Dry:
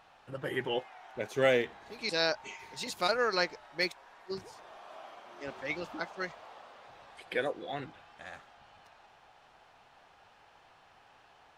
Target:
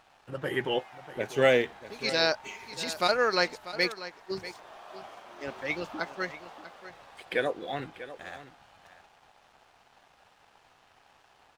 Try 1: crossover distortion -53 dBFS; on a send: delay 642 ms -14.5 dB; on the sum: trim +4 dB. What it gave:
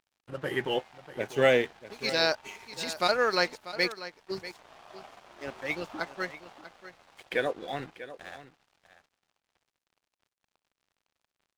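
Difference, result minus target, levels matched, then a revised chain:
crossover distortion: distortion +9 dB
crossover distortion -64.5 dBFS; on a send: delay 642 ms -14.5 dB; on the sum: trim +4 dB

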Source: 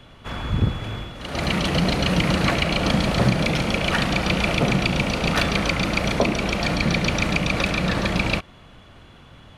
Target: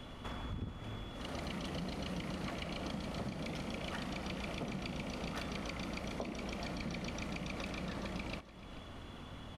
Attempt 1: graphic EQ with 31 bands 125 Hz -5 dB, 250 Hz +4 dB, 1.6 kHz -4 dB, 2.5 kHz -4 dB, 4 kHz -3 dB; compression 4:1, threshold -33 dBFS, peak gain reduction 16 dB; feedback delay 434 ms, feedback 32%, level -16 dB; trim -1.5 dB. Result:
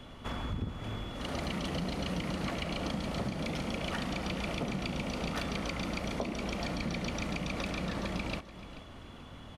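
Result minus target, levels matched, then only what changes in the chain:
compression: peak gain reduction -6 dB
change: compression 4:1, threshold -41 dBFS, peak gain reduction 22 dB

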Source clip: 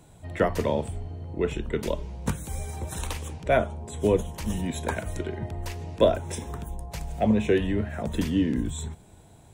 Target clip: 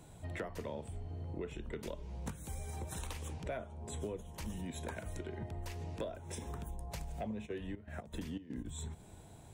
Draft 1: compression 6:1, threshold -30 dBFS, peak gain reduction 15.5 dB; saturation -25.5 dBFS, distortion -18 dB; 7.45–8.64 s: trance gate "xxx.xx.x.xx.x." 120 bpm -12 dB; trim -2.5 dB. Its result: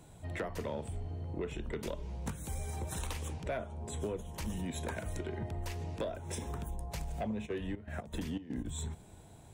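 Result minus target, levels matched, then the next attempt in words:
compression: peak gain reduction -5 dB
compression 6:1, threshold -36 dBFS, peak gain reduction 20.5 dB; saturation -25.5 dBFS, distortion -25 dB; 7.45–8.64 s: trance gate "xxx.xx.x.xx.x." 120 bpm -12 dB; trim -2.5 dB

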